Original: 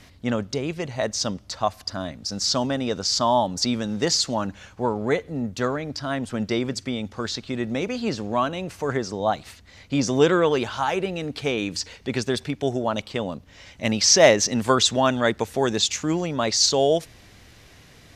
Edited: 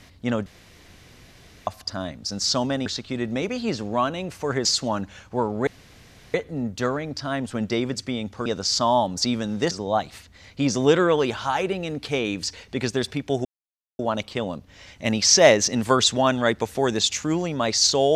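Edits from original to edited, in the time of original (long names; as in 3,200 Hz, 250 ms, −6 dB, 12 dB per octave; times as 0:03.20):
0:00.46–0:01.67: fill with room tone
0:02.86–0:04.11: swap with 0:07.25–0:09.04
0:05.13: splice in room tone 0.67 s
0:12.78: splice in silence 0.54 s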